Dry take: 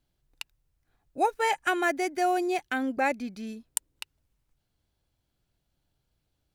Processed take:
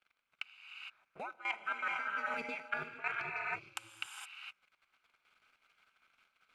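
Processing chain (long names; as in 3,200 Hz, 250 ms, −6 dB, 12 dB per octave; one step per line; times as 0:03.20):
mu-law and A-law mismatch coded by mu
pair of resonant band-passes 1,800 Hz, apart 0.7 octaves
output level in coarse steps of 17 dB
reverb whose tail is shaped and stops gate 490 ms rising, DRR 4 dB
reversed playback
downward compressor 6 to 1, threshold −50 dBFS, peak gain reduction 17 dB
reversed playback
ring modulation 110 Hz
level +17.5 dB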